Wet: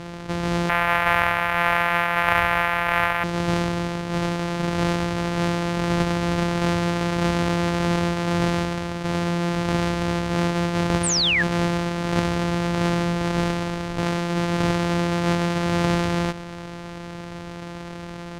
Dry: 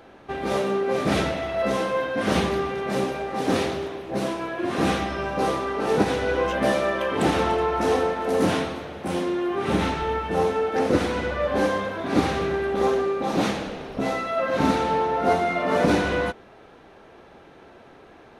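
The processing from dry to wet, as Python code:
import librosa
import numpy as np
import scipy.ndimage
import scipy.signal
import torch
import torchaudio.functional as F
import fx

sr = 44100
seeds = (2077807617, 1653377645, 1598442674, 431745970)

y = np.r_[np.sort(x[:len(x) // 256 * 256].reshape(-1, 256), axis=1).ravel(), x[len(x) // 256 * 256:]]
y = fx.curve_eq(y, sr, hz=(100.0, 150.0, 330.0, 710.0, 1700.0, 2400.0, 4400.0, 7700.0, 12000.0), db=(0, -8, -11, 8, 14, 13, -5, -7, 12), at=(0.69, 3.24))
y = fx.spec_paint(y, sr, seeds[0], shape='fall', start_s=11.03, length_s=0.4, low_hz=1600.0, high_hz=9600.0, level_db=-17.0)
y = fx.air_absorb(y, sr, metres=66.0)
y = fx.env_flatten(y, sr, amount_pct=50)
y = F.gain(torch.from_numpy(y), -3.0).numpy()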